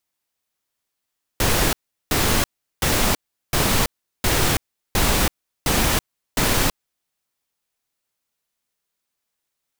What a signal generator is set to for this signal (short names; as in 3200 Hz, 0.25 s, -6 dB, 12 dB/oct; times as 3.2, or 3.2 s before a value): noise bursts pink, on 0.33 s, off 0.38 s, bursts 8, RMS -18.5 dBFS